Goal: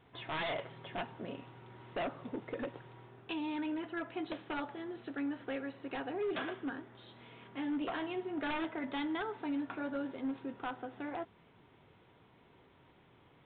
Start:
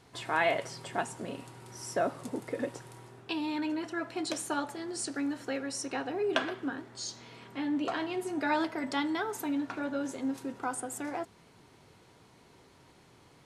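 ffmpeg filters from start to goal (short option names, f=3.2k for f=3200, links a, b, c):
-af "aeval=exprs='0.0473*(abs(mod(val(0)/0.0473+3,4)-2)-1)':c=same,aresample=8000,aresample=44100,volume=-4dB"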